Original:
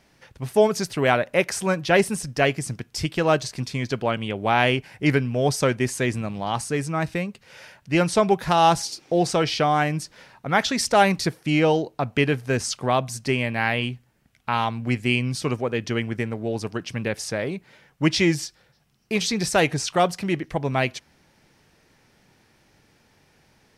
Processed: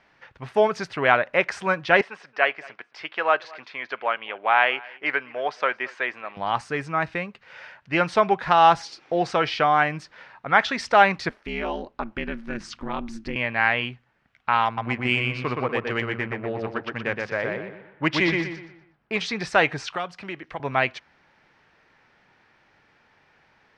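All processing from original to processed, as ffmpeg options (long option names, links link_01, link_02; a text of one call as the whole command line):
ffmpeg -i in.wav -filter_complex "[0:a]asettb=1/sr,asplit=3[link_01][link_02][link_03];[link_01]atrim=end=2.014[link_04];[link_02]atrim=start=2.01:end=6.37,asetpts=PTS-STARTPTS,afade=type=in:duration=0.004:curve=qsin,afade=type=out:start_time=4.356:duration=0.004:curve=qsin,highpass=560,lowpass=3400,aecho=1:1:222:0.0708,atrim=end_sample=192276[link_05];[link_03]atrim=start=6.366[link_06];[link_04][link_05]acrossfade=duration=0.004:curve1=hsin:curve2=qsin[link_07];[link_07][link_06]acrossfade=duration=0.004:curve1=qsin:curve2=hsin,asettb=1/sr,asplit=3[link_08][link_09][link_10];[link_08]atrim=end=11.294[link_11];[link_09]atrim=start=11.29:end=13.36,asetpts=PTS-STARTPTS,afade=type=in:duration=0.004:curve=qsin,afade=type=out:start_time=2.066:duration=0.004:curve=qsin,asubboost=boost=11:cutoff=220,acompressor=threshold=-20dB:ratio=2.5:attack=3.2:release=140:knee=1:detection=peak,aeval=exprs='val(0)*sin(2*PI*110*n/s)':channel_layout=same[link_12];[link_10]atrim=start=13.356[link_13];[link_11][link_12]acrossfade=duration=0.004:curve1=hsin:curve2=qsin[link_14];[link_14][link_13]acrossfade=duration=0.004:curve1=qsin:curve2=hsin,asettb=1/sr,asplit=3[link_15][link_16][link_17];[link_15]atrim=end=14.654[link_18];[link_16]atrim=start=14.65:end=19.17,asetpts=PTS-STARTPTS,afade=type=in:duration=0.004:curve=qsin,afade=type=out:start_time=4.516:duration=0.004:curve=qsin,adynamicsmooth=sensitivity=3.5:basefreq=2200,asplit=2[link_19][link_20];[link_20]adelay=121,lowpass=frequency=4500:poles=1,volume=-3dB,asplit=2[link_21][link_22];[link_22]adelay=121,lowpass=frequency=4500:poles=1,volume=0.37,asplit=2[link_23][link_24];[link_24]adelay=121,lowpass=frequency=4500:poles=1,volume=0.37,asplit=2[link_25][link_26];[link_26]adelay=121,lowpass=frequency=4500:poles=1,volume=0.37,asplit=2[link_27][link_28];[link_28]adelay=121,lowpass=frequency=4500:poles=1,volume=0.37[link_29];[link_19][link_21][link_23][link_25][link_27][link_29]amix=inputs=6:normalize=0,atrim=end_sample=199332[link_30];[link_17]atrim=start=19.166[link_31];[link_18][link_30]acrossfade=duration=0.004:curve1=hsin:curve2=qsin[link_32];[link_32][link_31]acrossfade=duration=0.004:curve1=qsin:curve2=hsin,asettb=1/sr,asplit=3[link_33][link_34][link_35];[link_33]atrim=end=19.904[link_36];[link_34]atrim=start=19.9:end=20.6,asetpts=PTS-STARTPTS,afade=type=in:duration=0.004:curve=qsin,afade=type=out:start_time=0.696:duration=0.004:curve=qsin,equalizer=frequency=1900:width_type=o:width=0.38:gain=-3.5,acrossover=split=240|1500[link_37][link_38][link_39];[link_37]acompressor=threshold=-39dB:ratio=4[link_40];[link_38]acompressor=threshold=-32dB:ratio=4[link_41];[link_39]acompressor=threshold=-36dB:ratio=4[link_42];[link_40][link_41][link_42]amix=inputs=3:normalize=0[link_43];[link_35]atrim=start=20.596[link_44];[link_36][link_43]acrossfade=duration=0.004:curve1=hsin:curve2=qsin[link_45];[link_45][link_44]acrossfade=duration=0.004:curve1=qsin:curve2=hsin,lowpass=4500,equalizer=frequency=1400:width_type=o:width=2.8:gain=13.5,volume=-8.5dB" out.wav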